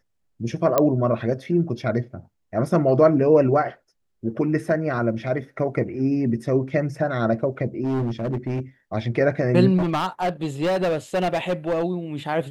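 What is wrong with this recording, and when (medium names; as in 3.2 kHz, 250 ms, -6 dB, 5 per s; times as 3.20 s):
0.78 s: pop -5 dBFS
7.84–8.60 s: clipped -21 dBFS
9.77–11.84 s: clipped -18.5 dBFS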